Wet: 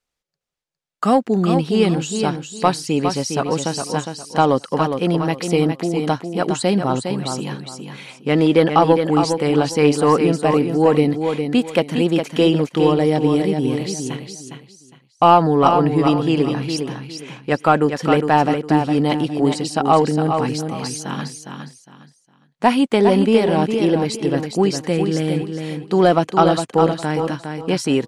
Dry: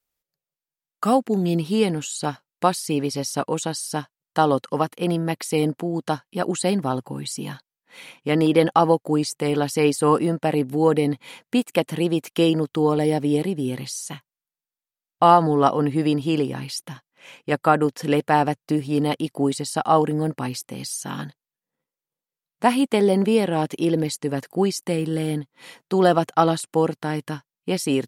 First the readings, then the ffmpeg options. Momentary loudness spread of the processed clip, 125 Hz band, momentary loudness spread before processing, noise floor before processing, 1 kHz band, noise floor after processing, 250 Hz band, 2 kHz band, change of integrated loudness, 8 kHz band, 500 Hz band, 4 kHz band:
12 LU, +4.5 dB, 12 LU, below −85 dBFS, +4.0 dB, −59 dBFS, +4.5 dB, +4.0 dB, +4.0 dB, +1.0 dB, +4.5 dB, +4.0 dB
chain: -filter_complex "[0:a]lowpass=7200,acontrast=25,asplit=2[link_01][link_02];[link_02]aecho=0:1:409|818|1227:0.473|0.123|0.032[link_03];[link_01][link_03]amix=inputs=2:normalize=0,volume=-1dB"

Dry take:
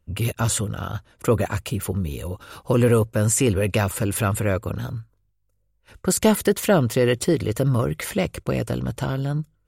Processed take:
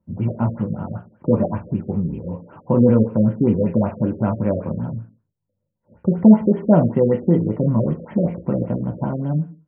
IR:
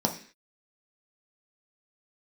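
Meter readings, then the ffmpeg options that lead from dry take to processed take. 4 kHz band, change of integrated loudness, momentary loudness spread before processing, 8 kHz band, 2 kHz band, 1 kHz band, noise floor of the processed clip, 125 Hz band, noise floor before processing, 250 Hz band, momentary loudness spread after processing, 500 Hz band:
below −25 dB, +3.0 dB, 11 LU, below −40 dB, below −10 dB, −1.0 dB, −76 dBFS, +2.0 dB, −68 dBFS, +7.5 dB, 12 LU, +1.0 dB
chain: -filter_complex "[1:a]atrim=start_sample=2205,afade=type=out:start_time=0.3:duration=0.01,atrim=end_sample=13671[link_01];[0:a][link_01]afir=irnorm=-1:irlink=0,afftfilt=real='re*lt(b*sr/1024,580*pow(3300/580,0.5+0.5*sin(2*PI*5.2*pts/sr)))':imag='im*lt(b*sr/1024,580*pow(3300/580,0.5+0.5*sin(2*PI*5.2*pts/sr)))':win_size=1024:overlap=0.75,volume=-12dB"

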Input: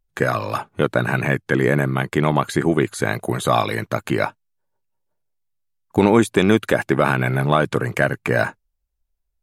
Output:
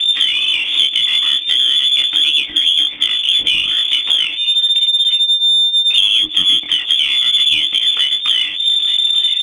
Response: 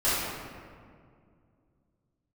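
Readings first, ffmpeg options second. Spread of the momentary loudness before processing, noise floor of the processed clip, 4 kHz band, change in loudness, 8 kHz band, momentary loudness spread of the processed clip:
7 LU, −24 dBFS, +28.0 dB, +8.5 dB, +5.5 dB, 3 LU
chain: -filter_complex "[0:a]aeval=exprs='val(0)+0.5*0.0708*sgn(val(0))':channel_layout=same,asplit=2[link_01][link_02];[link_02]aecho=0:1:882:0.0708[link_03];[link_01][link_03]amix=inputs=2:normalize=0,lowpass=frequency=3100:width_type=q:width=0.5098,lowpass=frequency=3100:width_type=q:width=0.6013,lowpass=frequency=3100:width_type=q:width=0.9,lowpass=frequency=3100:width_type=q:width=2.563,afreqshift=-3600,flanger=delay=20:depth=4.2:speed=0.36,equalizer=frequency=310:width_type=o:width=0.22:gain=13.5,acrossover=split=460[link_04][link_05];[link_05]acompressor=threshold=-31dB:ratio=6[link_06];[link_04][link_06]amix=inputs=2:normalize=0,aexciter=amount=4.1:drive=9.4:freq=2500,volume=4dB"

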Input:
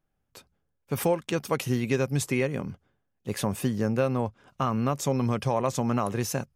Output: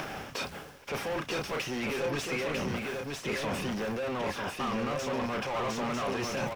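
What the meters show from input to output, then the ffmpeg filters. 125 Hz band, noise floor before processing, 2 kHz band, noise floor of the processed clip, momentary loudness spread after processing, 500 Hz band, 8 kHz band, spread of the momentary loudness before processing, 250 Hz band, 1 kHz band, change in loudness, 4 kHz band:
−11.0 dB, −77 dBFS, +2.5 dB, −47 dBFS, 5 LU, −4.0 dB, −5.5 dB, 7 LU, −6.0 dB, −2.5 dB, −5.0 dB, +3.0 dB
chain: -filter_complex "[0:a]acrossover=split=240|2900[link_01][link_02][link_03];[link_01]asoftclip=type=tanh:threshold=-33.5dB[link_04];[link_04][link_02][link_03]amix=inputs=3:normalize=0,acompressor=mode=upward:threshold=-39dB:ratio=2.5,equalizer=frequency=5500:width=3.7:gain=9.5,asplit=2[link_05][link_06];[link_06]adelay=33,volume=-13.5dB[link_07];[link_05][link_07]amix=inputs=2:normalize=0,asplit=2[link_08][link_09];[link_09]highpass=frequency=720:poles=1,volume=37dB,asoftclip=type=tanh:threshold=-12dB[link_10];[link_08][link_10]amix=inputs=2:normalize=0,lowpass=frequency=1300:poles=1,volume=-6dB,acrusher=bits=8:mix=0:aa=0.000001,areverse,acompressor=threshold=-42dB:ratio=4,areverse,equalizer=frequency=2700:width=1.4:gain=6,aecho=1:1:948:0.668,volume=5dB"

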